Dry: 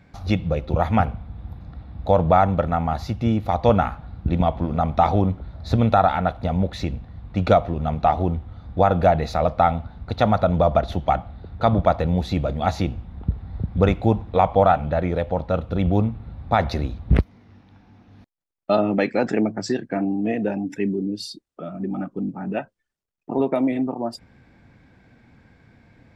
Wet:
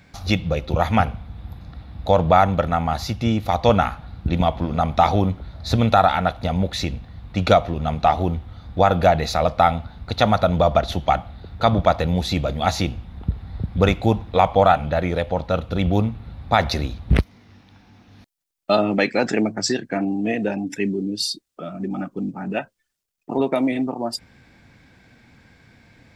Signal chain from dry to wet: treble shelf 2.2 kHz +12 dB

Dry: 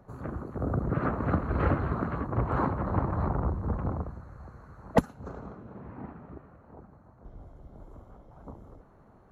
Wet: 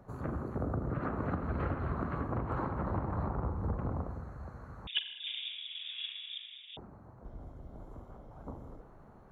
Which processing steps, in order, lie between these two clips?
compression 10:1, threshold -31 dBFS, peak gain reduction 16.5 dB; reverberation RT60 1.6 s, pre-delay 39 ms, DRR 8 dB; 4.87–6.77 s: frequency inversion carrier 3.6 kHz

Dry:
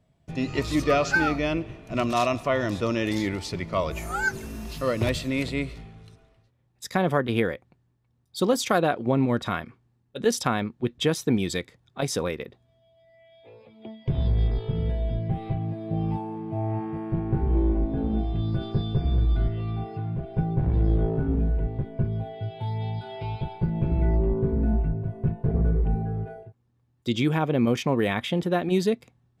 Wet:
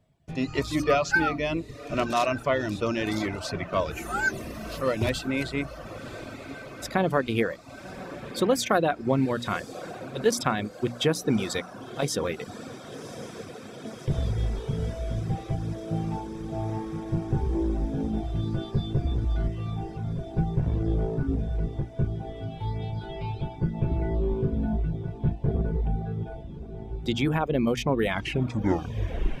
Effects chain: tape stop on the ending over 1.34 s; on a send: echo that smears into a reverb 1099 ms, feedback 75%, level -13.5 dB; on the sum: reverb removal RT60 0.72 s; hum notches 60/120/180/240/300 Hz

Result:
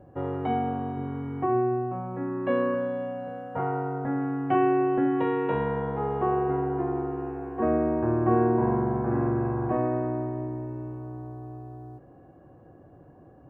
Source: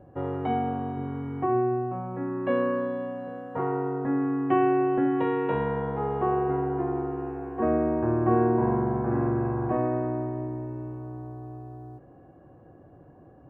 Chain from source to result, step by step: 2.74–4.55 s: comb 1.4 ms, depth 47%

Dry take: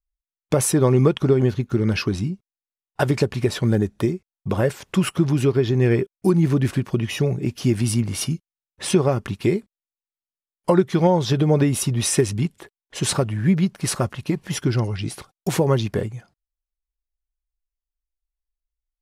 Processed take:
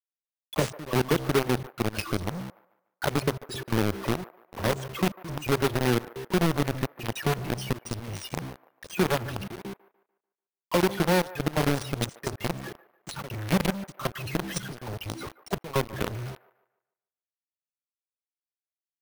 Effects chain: treble shelf 8.2 kHz +9.5 dB; de-hum 65.57 Hz, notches 7; in parallel at +3 dB: compression 12:1, threshold -28 dBFS, peak gain reduction 17.5 dB; on the sum: loudest bins only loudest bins 32; trance gate "x.xxxxxx.." 172 bpm -24 dB; phase dispersion lows, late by 57 ms, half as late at 1.5 kHz; companded quantiser 2-bit; peak limiter -7 dBFS, peak gain reduction 7 dB; on a send: feedback echo behind a band-pass 147 ms, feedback 35%, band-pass 910 Hz, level -16.5 dB; on the sum: careless resampling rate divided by 3×, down filtered, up hold; trim -8.5 dB

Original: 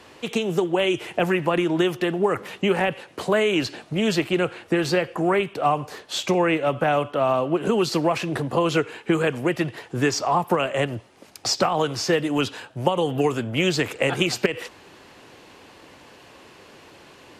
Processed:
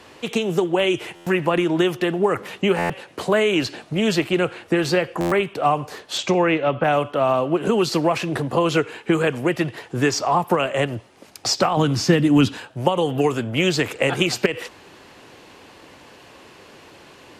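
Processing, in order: 6.17–6.83 s: low-pass 9.2 kHz -> 4 kHz 24 dB/octave; 11.77–12.58 s: resonant low shelf 340 Hz +8 dB, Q 1.5; buffer glitch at 1.15/2.78/5.20 s, samples 512, times 9; trim +2 dB

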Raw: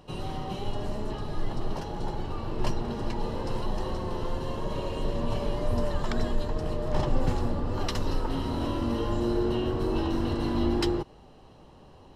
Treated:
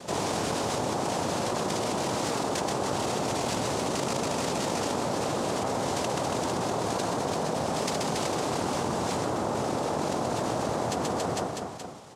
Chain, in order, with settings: octave divider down 2 oct, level +2 dB; Doppler pass-by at 4.00 s, 12 m/s, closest 1.7 m; in parallel at -5.5 dB: bit crusher 4-bit; on the sum: reverb removal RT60 0.75 s; noise-vocoded speech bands 2; reverse bouncing-ball echo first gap 130 ms, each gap 1.15×, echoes 5; level flattener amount 100%

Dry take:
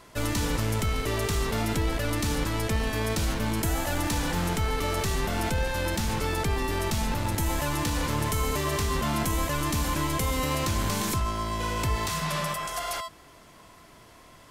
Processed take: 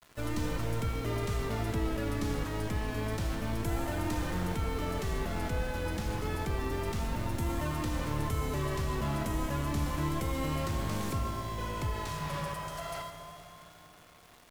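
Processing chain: treble shelf 2.6 kHz -8.5 dB; bit crusher 8-bit; Schroeder reverb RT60 3.9 s, combs from 27 ms, DRR 6 dB; vibrato 0.3 Hz 61 cents; trim -6 dB

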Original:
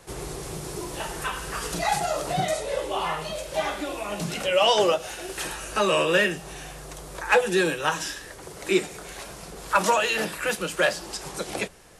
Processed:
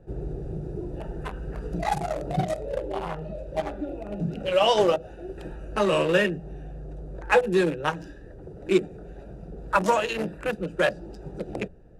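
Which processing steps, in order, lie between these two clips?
local Wiener filter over 41 samples; tilt EQ -1.5 dB/octave

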